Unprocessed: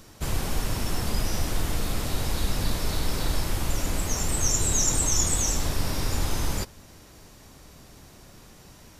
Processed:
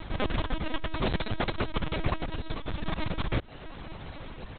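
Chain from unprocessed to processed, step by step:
reverb reduction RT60 0.68 s
comb filter 1.8 ms, depth 73%
compressor whose output falls as the input rises −30 dBFS, ratio −1
phase-vocoder stretch with locked phases 0.51×
linear-prediction vocoder at 8 kHz pitch kept
level +3 dB

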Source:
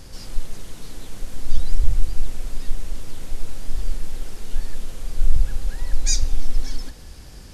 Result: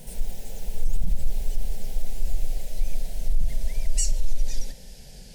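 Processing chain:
gliding playback speed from 186% → 96%
brickwall limiter −11 dBFS, peak gain reduction 9 dB
phaser with its sweep stopped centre 310 Hz, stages 6

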